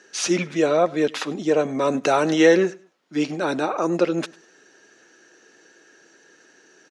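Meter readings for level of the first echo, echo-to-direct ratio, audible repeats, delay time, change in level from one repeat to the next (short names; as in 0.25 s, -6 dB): -22.5 dB, -22.0 dB, 2, 0.1 s, -11.5 dB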